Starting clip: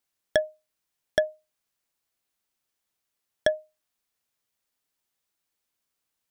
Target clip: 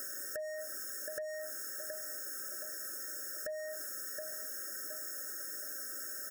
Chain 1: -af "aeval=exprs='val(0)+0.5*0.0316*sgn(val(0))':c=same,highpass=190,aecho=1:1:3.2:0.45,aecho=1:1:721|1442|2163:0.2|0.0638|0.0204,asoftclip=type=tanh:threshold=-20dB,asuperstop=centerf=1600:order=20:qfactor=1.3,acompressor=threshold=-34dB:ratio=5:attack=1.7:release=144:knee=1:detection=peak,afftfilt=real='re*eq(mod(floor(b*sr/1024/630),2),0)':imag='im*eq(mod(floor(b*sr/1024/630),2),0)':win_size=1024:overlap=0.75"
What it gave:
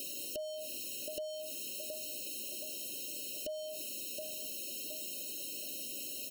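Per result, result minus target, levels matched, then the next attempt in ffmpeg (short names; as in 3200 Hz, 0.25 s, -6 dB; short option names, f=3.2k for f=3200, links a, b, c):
250 Hz band +7.0 dB; 2000 Hz band -7.0 dB
-af "aeval=exprs='val(0)+0.5*0.0316*sgn(val(0))':c=same,highpass=440,aecho=1:1:3.2:0.45,aecho=1:1:721|1442|2163:0.2|0.0638|0.0204,asoftclip=type=tanh:threshold=-20dB,asuperstop=centerf=1600:order=20:qfactor=1.3,acompressor=threshold=-34dB:ratio=5:attack=1.7:release=144:knee=1:detection=peak,afftfilt=real='re*eq(mod(floor(b*sr/1024/630),2),0)':imag='im*eq(mod(floor(b*sr/1024/630),2),0)':win_size=1024:overlap=0.75"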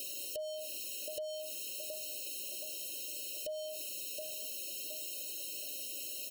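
2000 Hz band -7.0 dB
-af "aeval=exprs='val(0)+0.5*0.0316*sgn(val(0))':c=same,highpass=440,aecho=1:1:3.2:0.45,aecho=1:1:721|1442|2163:0.2|0.0638|0.0204,asoftclip=type=tanh:threshold=-20dB,asuperstop=centerf=3300:order=20:qfactor=1.3,acompressor=threshold=-34dB:ratio=5:attack=1.7:release=144:knee=1:detection=peak,afftfilt=real='re*eq(mod(floor(b*sr/1024/630),2),0)':imag='im*eq(mod(floor(b*sr/1024/630),2),0)':win_size=1024:overlap=0.75"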